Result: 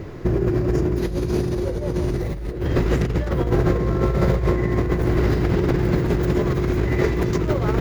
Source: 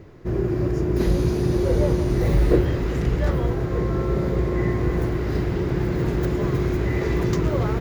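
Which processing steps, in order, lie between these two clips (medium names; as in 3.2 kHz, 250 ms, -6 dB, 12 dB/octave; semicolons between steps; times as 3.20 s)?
4.06–4.51 s: peaking EQ 280 Hz -9 dB 0.91 oct; in parallel at +2 dB: peak limiter -17.5 dBFS, peak gain reduction 11 dB; on the sum: compressor with a negative ratio -19 dBFS, ratio -0.5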